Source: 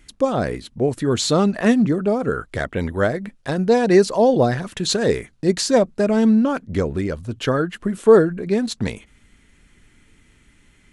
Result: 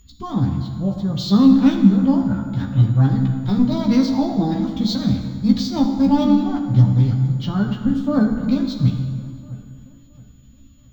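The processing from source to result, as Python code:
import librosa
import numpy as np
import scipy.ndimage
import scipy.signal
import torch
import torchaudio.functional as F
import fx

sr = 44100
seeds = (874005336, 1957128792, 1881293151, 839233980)

p1 = fx.curve_eq(x, sr, hz=(130.0, 180.0, 270.0, 480.0, 870.0, 2100.0, 3300.0, 4800.0, 12000.0), db=(0, 10, -15, -24, -9, -23, -2, 1, -4))
p2 = fx.pitch_keep_formants(p1, sr, semitones=5.0)
p3 = p2 + 10.0 ** (-39.0 / 20.0) * np.sin(2.0 * np.pi * 6900.0 * np.arange(len(p2)) / sr)
p4 = fx.air_absorb(p3, sr, metres=230.0)
p5 = fx.doubler(p4, sr, ms=15.0, db=-4.5)
p6 = p5 + fx.echo_wet_lowpass(p5, sr, ms=672, feedback_pct=37, hz=2300.0, wet_db=-20, dry=0)
p7 = fx.rev_plate(p6, sr, seeds[0], rt60_s=2.1, hf_ratio=0.65, predelay_ms=0, drr_db=4.0)
p8 = np.interp(np.arange(len(p7)), np.arange(len(p7))[::2], p7[::2])
y = p8 * 10.0 ** (4.0 / 20.0)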